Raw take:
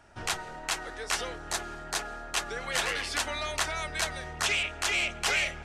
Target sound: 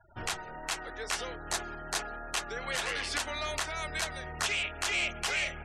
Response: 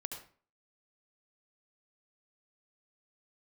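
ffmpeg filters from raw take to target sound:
-af "afftfilt=real='re*gte(hypot(re,im),0.00398)':imag='im*gte(hypot(re,im),0.00398)':win_size=1024:overlap=0.75,alimiter=limit=-19dB:level=0:latency=1:release=373"

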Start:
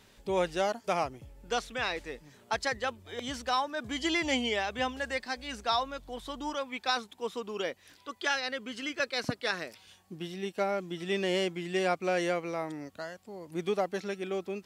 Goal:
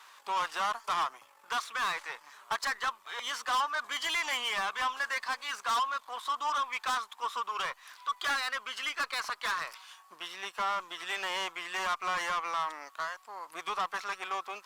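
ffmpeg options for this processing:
-filter_complex "[0:a]aeval=exprs='if(lt(val(0),0),0.447*val(0),val(0))':c=same,asplit=2[a][b];[b]alimiter=limit=-24dB:level=0:latency=1:release=91,volume=-0.5dB[c];[a][c]amix=inputs=2:normalize=0,highpass=f=1.1k:t=q:w=4.9,asoftclip=type=tanh:threshold=-26dB" -ar 48000 -c:a libopus -b:a 64k

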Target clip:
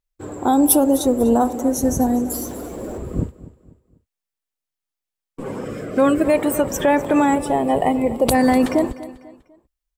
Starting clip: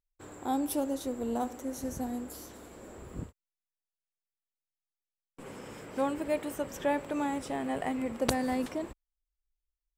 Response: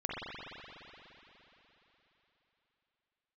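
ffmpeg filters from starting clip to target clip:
-filter_complex "[0:a]asettb=1/sr,asplit=3[a][b][c];[a]atrim=end=2.304[d];[b]atrim=start=2.3:end=2.98,asetpts=PTS-STARTPTS,afade=t=in:d=0.004:c=qsin,afade=t=out:st=0.676:d=0.004:c=qsin,aeval=exprs='val(0)+0.5*0.00237*sgn(val(0))':c=same[e];[c]atrim=start=2.976[f];[d][e]acrossfade=d=0.004:c1=hsin:c2=qsin[g];[g][f]acrossfade=d=0.004:c1=qsin:c2=hsin,asettb=1/sr,asplit=3[h][i][j];[h]atrim=end=7.354[k];[i]atrim=start=7.35:end=8.35,asetpts=PTS-STARTPTS,afade=t=in:d=0.004:c=qsin,afade=t=out:st=0.996:d=0.004:c=qsin,equalizer=f=100:t=o:w=0.67:g=-3,equalizer=f=250:t=o:w=0.67:g=-5,equalizer=f=1.6k:t=o:w=0.67:g=-12,equalizer=f=6.3k:t=o:w=0.67:g=-7[l];[j]atrim=start=8.346[m];[k][l]acrossfade=d=0.004:c1=hsin:c2=qsin[n];[n][m]acrossfade=d=0.004:c1=qsin:c2=hsin,volume=16.5dB,asoftclip=hard,volume=-16.5dB,asettb=1/sr,asplit=3[o][p][q];[o]atrim=end=5.644[r];[p]atrim=start=5.64:end=6.26,asetpts=PTS-STARTPTS,afade=t=in:d=0.004:c=qsin,afade=t=out:st=0.616:d=0.004:c=qsin,asuperstop=centerf=900:order=4:qfactor=3.7[s];[q]atrim=start=6.256[t];[r][s]acrossfade=d=0.004:c1=hsin:c2=qsin[u];[u][t]acrossfade=d=0.004:c1=qsin:c2=hsin,afftdn=nr=12:nf=-46,aecho=1:1:247|494|741:0.133|0.0507|0.0193,alimiter=level_in=23.5dB:limit=-1dB:release=50:level=0:latency=1,adynamicequalizer=threshold=0.0126:dfrequency=6700:dqfactor=0.7:tfrequency=6700:tqfactor=0.7:attack=5:release=100:ratio=0.375:range=3.5:mode=boostabove:tftype=highshelf,volume=-6dB"

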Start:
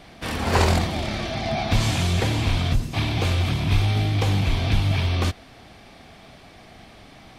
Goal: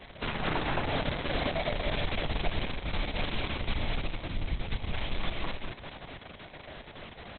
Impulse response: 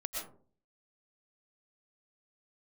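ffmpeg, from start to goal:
-filter_complex "[0:a]lowpass=7.7k,asettb=1/sr,asplit=3[a][b][c];[a]atrim=end=4.064[d];[b]atrim=start=4.06:end=4.72,asetpts=PTS-STARTPTS,afade=t=in:d=0.004:c=qsin,afade=t=out:st=0.656:d=0.004:c=qsin,acrossover=split=290[e][f];[f]acompressor=threshold=-36dB:ratio=5[g];[e][g]amix=inputs=2:normalize=0[h];[c]atrim=start=4.716[i];[d][h]acrossfade=d=0.004:c1=hsin:c2=qsin[j];[j][i]acrossfade=d=0.004:c1=qsin:c2=hsin,acrossover=split=2500[k][l];[l]asoftclip=type=tanh:threshold=-28.5dB[m];[k][m]amix=inputs=2:normalize=0,afreqshift=-78,asplit=2[n][o];[o]adelay=220,highpass=300,lowpass=3.4k,asoftclip=type=hard:threshold=-17.5dB,volume=-11dB[p];[n][p]amix=inputs=2:normalize=0,acrusher=bits=8:mode=log:mix=0:aa=0.000001,bandreject=f=50:t=h:w=6,bandreject=f=100:t=h:w=6,bandreject=f=150:t=h:w=6,bandreject=f=200:t=h:w=6,bandreject=f=250:t=h:w=6,acompressor=threshold=-28dB:ratio=6,asplit=2[q][r];[r]aecho=0:1:220|418|596.2|756.6|900.9:0.631|0.398|0.251|0.158|0.1[s];[q][s]amix=inputs=2:normalize=0" -ar 48000 -c:a libopus -b:a 6k

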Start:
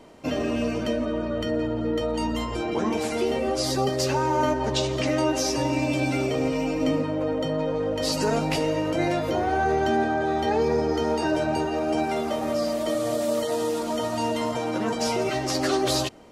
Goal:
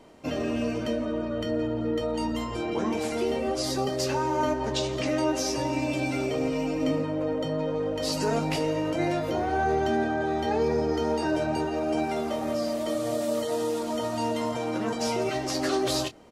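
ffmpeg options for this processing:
-filter_complex "[0:a]asplit=2[a][b];[b]adelay=26,volume=-11.5dB[c];[a][c]amix=inputs=2:normalize=0,volume=-3.5dB"

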